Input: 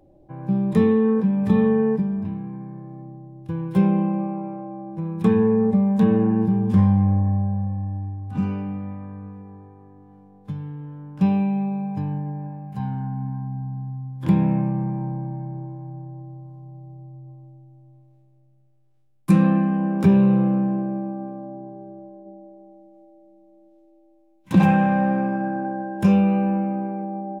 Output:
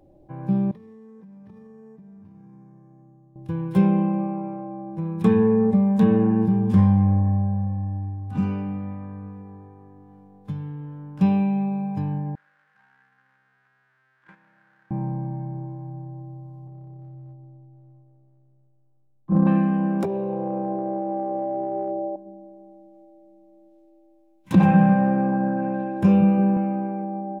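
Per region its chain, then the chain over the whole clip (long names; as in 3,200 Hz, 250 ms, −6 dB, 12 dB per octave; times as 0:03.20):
0:00.71–0:03.36: tuned comb filter 51 Hz, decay 1.8 s, harmonics odd, mix 80% + downward compressor 10 to 1, threshold −43 dBFS + linearly interpolated sample-rate reduction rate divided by 6×
0:12.35–0:14.91: converter with a step at zero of −26.5 dBFS + resonant band-pass 1,600 Hz, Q 7.1 + noise gate −45 dBFS, range −13 dB
0:16.67–0:19.47: low-pass filter 1,100 Hz 24 dB per octave + transient designer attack −11 dB, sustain −7 dB
0:20.03–0:22.16: flat-topped bell 570 Hz +16 dB + downward compressor 20 to 1, threshold −22 dBFS
0:24.55–0:26.57: high-shelf EQ 2,600 Hz −10 dB + echo through a band-pass that steps 170 ms, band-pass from 170 Hz, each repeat 0.7 octaves, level −3 dB
whole clip: no processing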